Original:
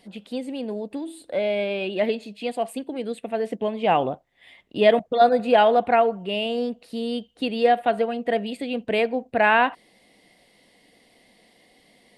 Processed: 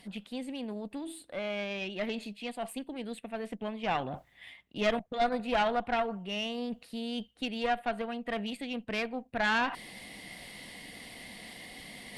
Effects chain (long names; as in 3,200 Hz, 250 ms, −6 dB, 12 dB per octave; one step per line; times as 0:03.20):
parametric band 5,600 Hz −4.5 dB 1.6 octaves
reversed playback
upward compression, threshold −22 dBFS
reversed playback
parametric band 460 Hz −10.5 dB 1.8 octaves
tube saturation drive 19 dB, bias 0.75